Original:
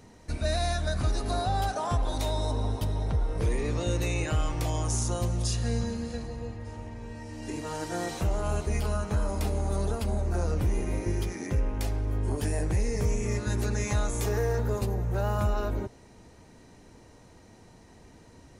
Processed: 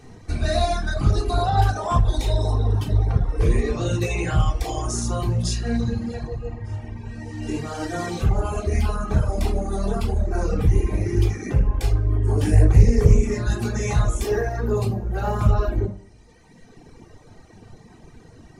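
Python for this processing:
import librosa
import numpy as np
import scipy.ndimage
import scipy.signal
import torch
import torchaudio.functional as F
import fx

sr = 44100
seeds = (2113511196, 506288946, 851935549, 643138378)

y = fx.high_shelf(x, sr, hz=11000.0, db=-6.0)
y = fx.room_shoebox(y, sr, seeds[0], volume_m3=1000.0, walls='furnished', distance_m=3.6)
y = fx.dereverb_blind(y, sr, rt60_s=1.6)
y = fx.low_shelf(y, sr, hz=320.0, db=6.0, at=(12.43, 13.34))
y = fx.doppler_dist(y, sr, depth_ms=0.29)
y = y * 10.0 ** (3.0 / 20.0)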